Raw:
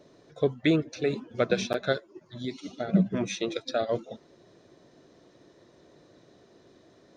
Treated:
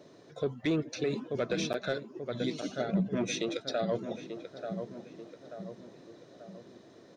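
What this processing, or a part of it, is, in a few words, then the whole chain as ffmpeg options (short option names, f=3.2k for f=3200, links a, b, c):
soft clipper into limiter: -filter_complex "[0:a]highpass=98,asettb=1/sr,asplit=3[a][b][c];[a]atrim=end=2.444[d];[b]atrim=start=2.44:end=2.88,asetpts=PTS-STARTPTS,afade=t=in:d=0.004:c=qsin,afade=t=out:st=0.436:d=0.004:c=qsin,highshelf=f=6.4k:g=7[e];[c]atrim=start=2.876[f];[d][e]acrossfade=d=0.004:c1=hsin:c2=qsin[g];[g][f]acrossfade=d=0.004:c1=qsin:c2=hsin,asplit=2[h][i];[i]adelay=885,lowpass=f=1.7k:p=1,volume=-12.5dB,asplit=2[j][k];[k]adelay=885,lowpass=f=1.7k:p=1,volume=0.52,asplit=2[l][m];[m]adelay=885,lowpass=f=1.7k:p=1,volume=0.52,asplit=2[n][o];[o]adelay=885,lowpass=f=1.7k:p=1,volume=0.52,asplit=2[p][q];[q]adelay=885,lowpass=f=1.7k:p=1,volume=0.52[r];[h][j][l][n][p][r]amix=inputs=6:normalize=0,asoftclip=type=tanh:threshold=-15dB,alimiter=limit=-23.5dB:level=0:latency=1:release=147,volume=1.5dB"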